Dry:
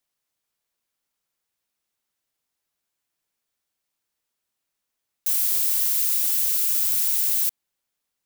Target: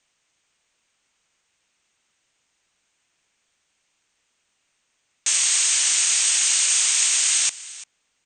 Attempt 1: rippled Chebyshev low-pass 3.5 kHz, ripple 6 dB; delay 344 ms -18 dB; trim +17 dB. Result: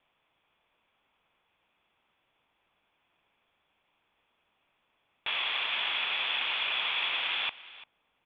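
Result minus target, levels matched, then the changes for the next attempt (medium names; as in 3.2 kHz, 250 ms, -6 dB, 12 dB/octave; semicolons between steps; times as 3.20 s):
4 kHz band +6.0 dB
change: rippled Chebyshev low-pass 8.7 kHz, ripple 6 dB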